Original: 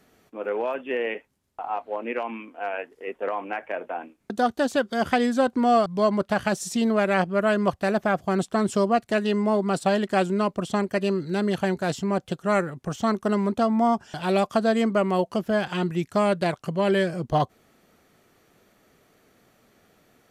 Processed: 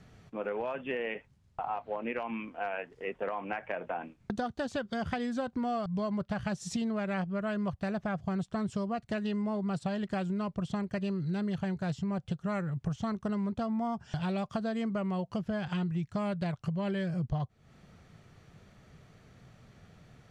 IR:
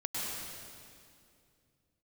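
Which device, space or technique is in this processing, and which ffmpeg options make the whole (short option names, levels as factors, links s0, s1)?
jukebox: -af "lowpass=6500,lowshelf=f=200:t=q:w=1.5:g=11.5,acompressor=threshold=0.0282:ratio=6"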